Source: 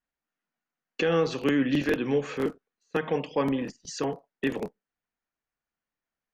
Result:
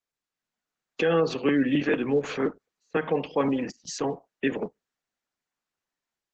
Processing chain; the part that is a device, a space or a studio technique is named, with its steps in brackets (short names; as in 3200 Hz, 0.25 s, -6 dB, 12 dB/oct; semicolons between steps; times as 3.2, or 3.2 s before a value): noise-suppressed video call (HPF 130 Hz 12 dB/oct; spectral gate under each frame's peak -30 dB strong; AGC gain up to 8 dB; gain -6 dB; Opus 12 kbps 48000 Hz)